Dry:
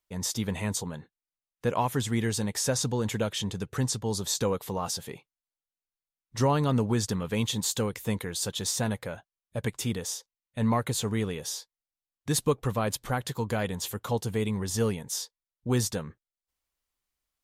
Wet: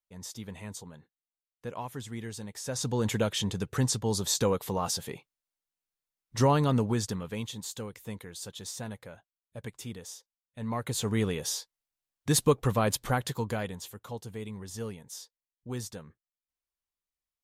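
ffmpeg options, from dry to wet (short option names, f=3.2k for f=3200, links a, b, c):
-af "volume=13dB,afade=t=in:st=2.64:d=0.4:silence=0.251189,afade=t=out:st=6.52:d=1:silence=0.281838,afade=t=in:st=10.66:d=0.61:silence=0.251189,afade=t=out:st=13.07:d=0.82:silence=0.237137"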